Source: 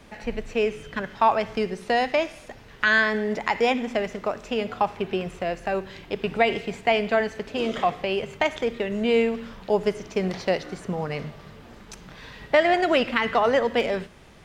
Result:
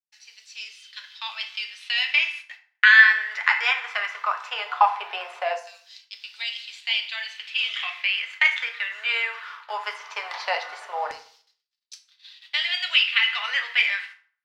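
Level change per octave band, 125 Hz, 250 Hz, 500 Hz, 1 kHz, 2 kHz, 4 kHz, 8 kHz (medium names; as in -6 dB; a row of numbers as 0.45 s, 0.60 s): under -40 dB, under -40 dB, -16.0 dB, -2.5 dB, +7.0 dB, +8.5 dB, no reading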